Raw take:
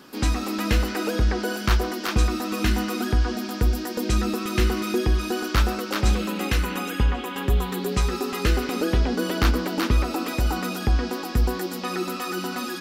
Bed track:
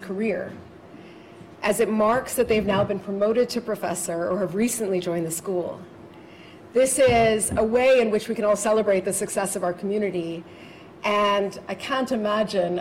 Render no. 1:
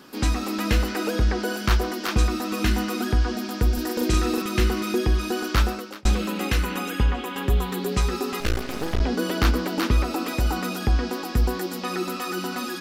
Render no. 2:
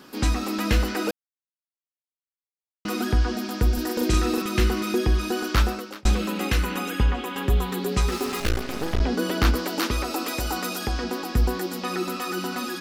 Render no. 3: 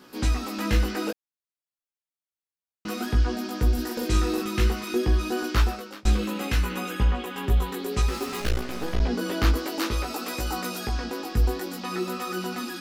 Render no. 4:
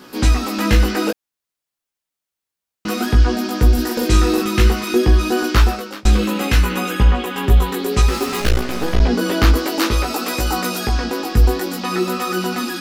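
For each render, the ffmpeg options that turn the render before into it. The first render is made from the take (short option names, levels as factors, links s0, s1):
-filter_complex "[0:a]asettb=1/sr,asplit=3[s0][s1][s2];[s0]atrim=end=3.734[s3];[s1]atrim=start=3.73:end=4.42,asetpts=PTS-STARTPTS,afade=t=in:d=0.004:c=qsin,afade=t=out:st=0.686:d=0.004:c=qsin,asplit=2[s4][s5];[s5]adelay=41,volume=0.794[s6];[s4][s6]amix=inputs=2:normalize=0,atrim=end_sample=30429[s7];[s2]atrim=start=4.416[s8];[s3][s7]acrossfade=d=0.004:c1=hsin:c2=qsin[s9];[s9][s8]acrossfade=d=0.004:c1=qsin:c2=hsin,asettb=1/sr,asplit=3[s10][s11][s12];[s10]atrim=end=8.404[s13];[s11]atrim=start=8.4:end=9.01,asetpts=PTS-STARTPTS,afade=t=in:d=0.004:c=qsin,afade=t=out:st=0.606:d=0.004:c=qsin,aeval=exprs='max(val(0),0)':c=same[s14];[s12]atrim=start=9.006[s15];[s13][s14]acrossfade=d=0.004:c1=hsin:c2=qsin[s16];[s16][s15]acrossfade=d=0.004:c1=qsin:c2=hsin,asplit=2[s17][s18];[s17]atrim=end=6.05,asetpts=PTS-STARTPTS,afade=t=out:st=5.63:d=0.42[s19];[s18]atrim=start=6.05,asetpts=PTS-STARTPTS,afade=t=in:d=0.004:c=hsin[s20];[s19][s20]concat=n=2:v=0:a=1"
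-filter_complex "[0:a]asettb=1/sr,asplit=3[s0][s1][s2];[s0]atrim=end=8.084[s3];[s1]atrim=start=8.08:end=8.49,asetpts=PTS-STARTPTS,afade=t=in:d=0.004:c=qsin,afade=t=out:st=0.406:d=0.004:c=qsin,acrusher=bits=4:mix=0:aa=0.5[s4];[s2]atrim=start=8.486[s5];[s3][s4]acrossfade=d=0.004:c1=hsin:c2=qsin[s6];[s6][s5]acrossfade=d=0.004:c1=qsin:c2=hsin,asettb=1/sr,asplit=3[s7][s8][s9];[s7]atrim=end=9.554[s10];[s8]atrim=start=9.55:end=11.04,asetpts=PTS-STARTPTS,afade=t=in:d=0.004:c=qsin,afade=t=out:st=1.486:d=0.004:c=qsin,bass=f=250:g=-8,treble=f=4000:g=5[s11];[s9]atrim=start=11.036[s12];[s10][s11]acrossfade=d=0.004:c1=hsin:c2=qsin[s13];[s13][s12]acrossfade=d=0.004:c1=qsin:c2=hsin,asplit=3[s14][s15][s16];[s14]atrim=end=1.11,asetpts=PTS-STARTPTS,afade=t=out:st=1.106:d=0.004:c=hsin[s17];[s15]atrim=start=1.11:end=2.85,asetpts=PTS-STARTPTS,volume=0[s18];[s16]atrim=start=2.85,asetpts=PTS-STARTPTS,afade=t=in:d=0.004:c=hsin[s19];[s17][s18][s19]concat=n=3:v=0:a=1"
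-af "flanger=delay=16:depth=2.7:speed=0.57"
-af "volume=2.99,alimiter=limit=0.708:level=0:latency=1"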